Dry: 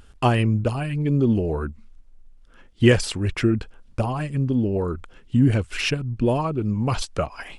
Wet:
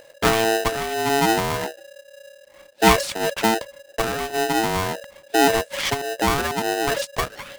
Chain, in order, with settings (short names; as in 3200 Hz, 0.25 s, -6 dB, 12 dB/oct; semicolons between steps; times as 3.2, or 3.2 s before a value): polarity switched at an audio rate 560 Hz